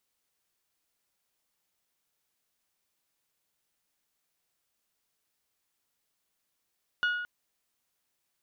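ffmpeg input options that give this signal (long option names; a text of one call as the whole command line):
ffmpeg -f lavfi -i "aevalsrc='0.0708*pow(10,-3*t/1.09)*sin(2*PI*1450*t)+0.0251*pow(10,-3*t/0.671)*sin(2*PI*2900*t)+0.00891*pow(10,-3*t/0.591)*sin(2*PI*3480*t)+0.00316*pow(10,-3*t/0.505)*sin(2*PI*4350*t)+0.00112*pow(10,-3*t/0.413)*sin(2*PI*5800*t)':duration=0.22:sample_rate=44100" out.wav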